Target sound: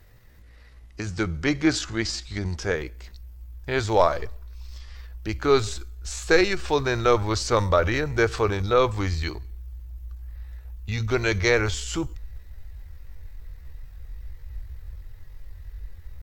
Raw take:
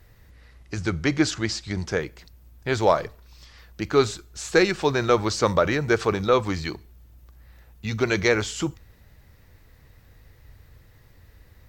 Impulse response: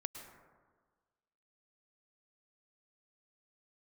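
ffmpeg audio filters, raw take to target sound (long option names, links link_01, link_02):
-af "asubboost=boost=12:cutoff=50,atempo=0.72"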